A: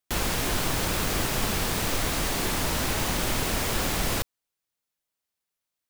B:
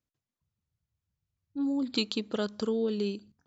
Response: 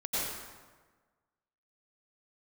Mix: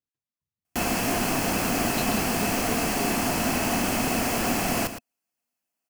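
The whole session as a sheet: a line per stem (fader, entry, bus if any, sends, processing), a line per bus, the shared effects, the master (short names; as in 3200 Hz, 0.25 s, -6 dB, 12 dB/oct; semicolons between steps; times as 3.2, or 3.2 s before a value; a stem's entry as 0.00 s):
+0.5 dB, 0.65 s, no send, echo send -11 dB, bell 3700 Hz -13 dB 0.21 oct; small resonant body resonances 240/700/2600 Hz, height 10 dB, ringing for 35 ms
-7.5 dB, 0.00 s, no send, no echo send, dry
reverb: off
echo: echo 0.113 s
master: low shelf 86 Hz -11 dB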